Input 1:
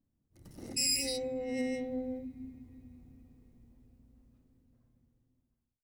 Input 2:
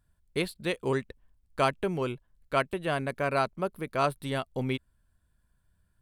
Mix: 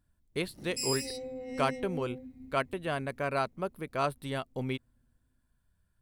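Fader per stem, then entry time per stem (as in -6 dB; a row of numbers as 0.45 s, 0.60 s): -4.0 dB, -3.5 dB; 0.00 s, 0.00 s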